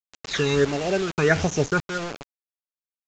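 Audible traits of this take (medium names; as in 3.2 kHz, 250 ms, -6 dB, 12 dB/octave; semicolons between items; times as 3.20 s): chopped level 0.85 Hz, depth 65%, duty 55%; phasing stages 12, 1.5 Hz, lowest notch 560–1600 Hz; a quantiser's noise floor 6-bit, dither none; µ-law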